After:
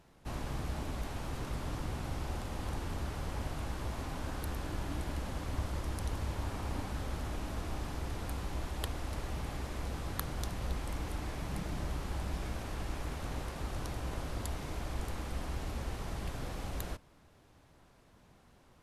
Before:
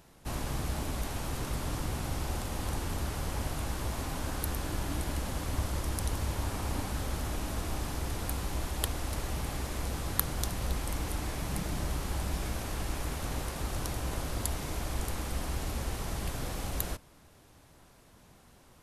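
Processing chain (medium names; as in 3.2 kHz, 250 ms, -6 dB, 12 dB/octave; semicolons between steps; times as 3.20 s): treble shelf 6.5 kHz -11 dB; trim -3.5 dB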